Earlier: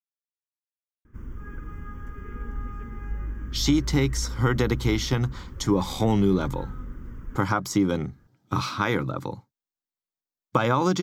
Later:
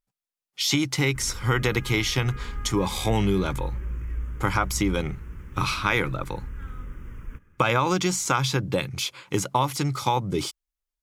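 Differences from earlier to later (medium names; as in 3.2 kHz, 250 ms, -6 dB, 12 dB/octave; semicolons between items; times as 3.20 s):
speech: entry -2.95 s; master: add fifteen-band graphic EQ 250 Hz -6 dB, 2.5 kHz +10 dB, 10 kHz +11 dB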